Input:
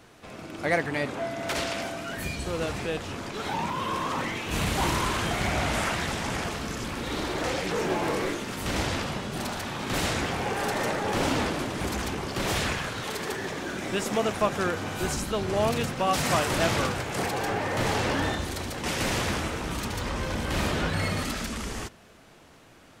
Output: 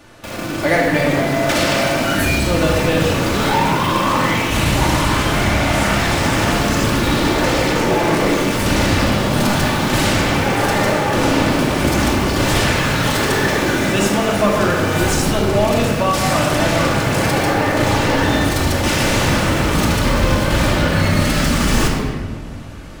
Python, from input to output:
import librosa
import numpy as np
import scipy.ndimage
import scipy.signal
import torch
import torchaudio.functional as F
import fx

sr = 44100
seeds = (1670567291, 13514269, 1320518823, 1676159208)

p1 = fx.quant_companded(x, sr, bits=2)
p2 = x + (p1 * 10.0 ** (-7.5 / 20.0))
p3 = fx.room_shoebox(p2, sr, seeds[0], volume_m3=1800.0, walls='mixed', distance_m=2.5)
p4 = fx.rider(p3, sr, range_db=10, speed_s=0.5)
y = p4 * 10.0 ** (4.0 / 20.0)